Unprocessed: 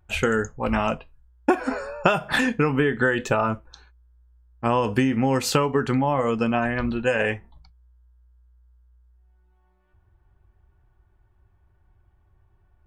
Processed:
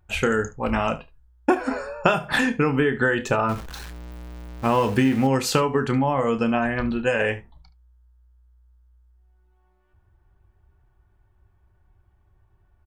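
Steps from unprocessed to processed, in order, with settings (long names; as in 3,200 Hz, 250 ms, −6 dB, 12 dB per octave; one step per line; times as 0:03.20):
0:03.49–0:05.27: converter with a step at zero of −32 dBFS
ambience of single reflections 30 ms −13 dB, 73 ms −18 dB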